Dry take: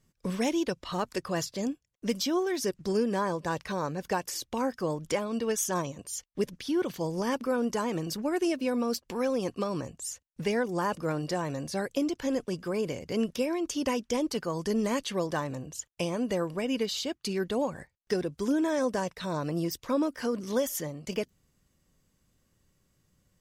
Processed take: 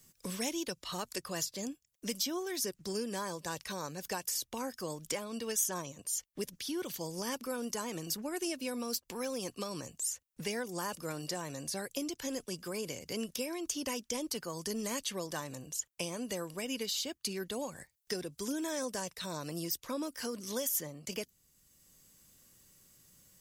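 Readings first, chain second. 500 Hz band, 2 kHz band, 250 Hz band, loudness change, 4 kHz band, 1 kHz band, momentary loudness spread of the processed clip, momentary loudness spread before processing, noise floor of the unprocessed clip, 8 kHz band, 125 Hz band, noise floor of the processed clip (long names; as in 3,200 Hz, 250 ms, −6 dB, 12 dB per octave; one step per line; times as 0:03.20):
−9.5 dB, −5.5 dB, −9.5 dB, −6.0 dB, −1.0 dB, −8.5 dB, 6 LU, 6 LU, −74 dBFS, +1.5 dB, −9.5 dB, −76 dBFS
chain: first-order pre-emphasis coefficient 0.8
multiband upward and downward compressor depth 40%
level +4 dB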